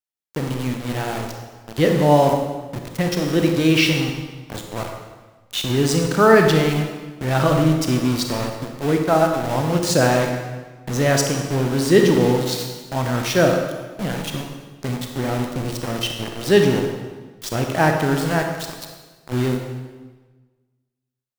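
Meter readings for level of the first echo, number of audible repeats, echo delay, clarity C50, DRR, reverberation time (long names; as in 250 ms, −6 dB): no echo audible, no echo audible, no echo audible, 4.5 dB, 3.0 dB, 1.3 s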